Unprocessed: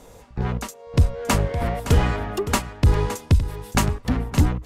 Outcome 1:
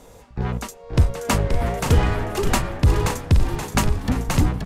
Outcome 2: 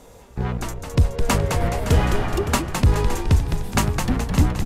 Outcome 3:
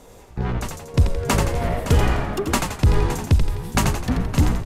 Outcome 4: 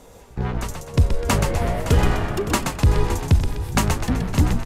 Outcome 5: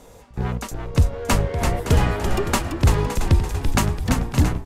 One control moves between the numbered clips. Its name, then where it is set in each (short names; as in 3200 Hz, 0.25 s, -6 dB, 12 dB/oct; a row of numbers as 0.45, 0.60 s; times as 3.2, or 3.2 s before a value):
frequency-shifting echo, time: 527, 211, 85, 126, 337 ms